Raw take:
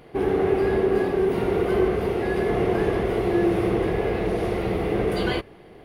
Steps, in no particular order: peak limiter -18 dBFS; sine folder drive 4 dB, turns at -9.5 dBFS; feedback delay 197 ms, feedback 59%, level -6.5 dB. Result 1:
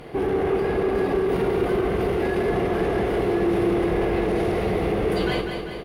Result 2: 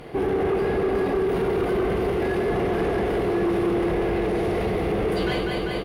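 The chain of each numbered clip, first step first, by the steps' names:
sine folder > peak limiter > feedback delay; feedback delay > sine folder > peak limiter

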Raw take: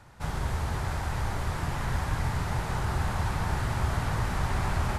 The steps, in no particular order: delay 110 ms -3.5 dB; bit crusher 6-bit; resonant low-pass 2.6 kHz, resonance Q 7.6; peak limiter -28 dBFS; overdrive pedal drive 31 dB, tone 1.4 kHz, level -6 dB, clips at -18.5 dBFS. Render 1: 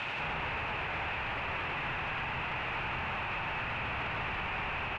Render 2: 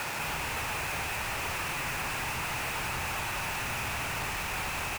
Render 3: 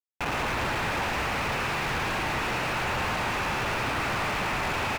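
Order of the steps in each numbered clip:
overdrive pedal > delay > bit crusher > resonant low-pass > peak limiter; delay > overdrive pedal > resonant low-pass > peak limiter > bit crusher; resonant low-pass > peak limiter > bit crusher > delay > overdrive pedal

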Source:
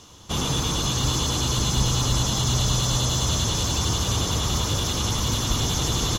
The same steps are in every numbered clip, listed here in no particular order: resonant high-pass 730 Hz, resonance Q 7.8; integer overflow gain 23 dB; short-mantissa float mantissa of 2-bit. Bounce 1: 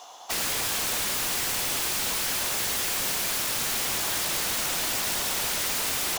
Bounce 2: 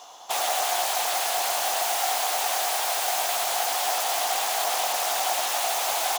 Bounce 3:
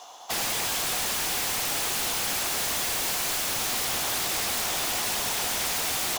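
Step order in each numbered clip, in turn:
short-mantissa float > resonant high-pass > integer overflow; short-mantissa float > integer overflow > resonant high-pass; resonant high-pass > short-mantissa float > integer overflow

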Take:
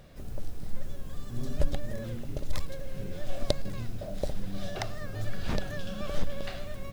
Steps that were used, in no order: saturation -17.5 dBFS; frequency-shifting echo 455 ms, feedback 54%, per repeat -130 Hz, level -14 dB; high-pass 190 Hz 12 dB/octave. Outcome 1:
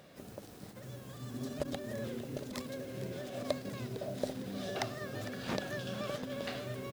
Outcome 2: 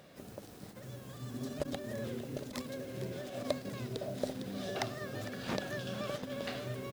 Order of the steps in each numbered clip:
saturation > frequency-shifting echo > high-pass; frequency-shifting echo > saturation > high-pass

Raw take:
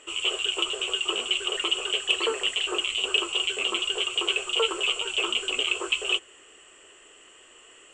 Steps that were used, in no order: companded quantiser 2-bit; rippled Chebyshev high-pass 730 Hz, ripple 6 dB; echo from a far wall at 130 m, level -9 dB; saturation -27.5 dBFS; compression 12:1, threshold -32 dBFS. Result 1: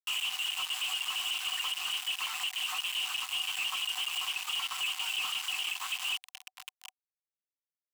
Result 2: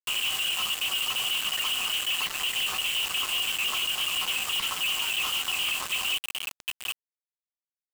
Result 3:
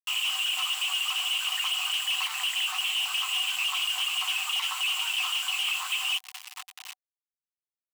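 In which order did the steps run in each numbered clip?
compression > echo from a far wall > companded quantiser > rippled Chebyshev high-pass > saturation; echo from a far wall > saturation > compression > rippled Chebyshev high-pass > companded quantiser; saturation > echo from a far wall > compression > companded quantiser > rippled Chebyshev high-pass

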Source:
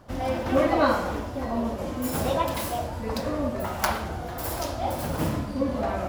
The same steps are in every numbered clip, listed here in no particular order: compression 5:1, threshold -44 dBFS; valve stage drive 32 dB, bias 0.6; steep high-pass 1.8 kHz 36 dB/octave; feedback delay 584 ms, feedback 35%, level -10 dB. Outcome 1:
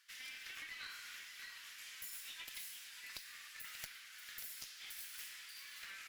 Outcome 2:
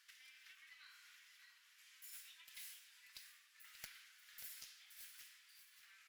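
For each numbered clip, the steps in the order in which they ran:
steep high-pass > compression > feedback delay > valve stage; compression > steep high-pass > valve stage > feedback delay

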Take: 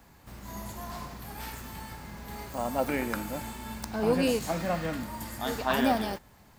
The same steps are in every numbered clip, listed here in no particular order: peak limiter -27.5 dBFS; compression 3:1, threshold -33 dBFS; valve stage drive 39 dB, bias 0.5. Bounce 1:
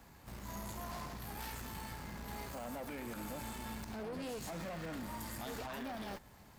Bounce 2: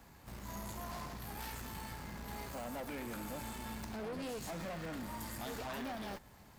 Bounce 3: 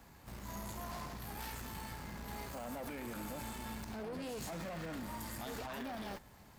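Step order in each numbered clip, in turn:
compression > peak limiter > valve stage; compression > valve stage > peak limiter; peak limiter > compression > valve stage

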